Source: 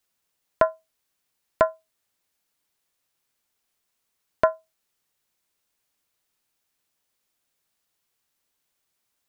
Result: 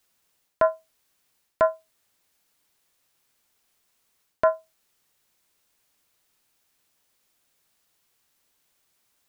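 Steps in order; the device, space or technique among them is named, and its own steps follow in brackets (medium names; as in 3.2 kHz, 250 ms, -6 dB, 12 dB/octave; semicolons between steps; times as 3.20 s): compression on the reversed sound (reverse; compression 12:1, threshold -23 dBFS, peak gain reduction 11 dB; reverse); trim +6.5 dB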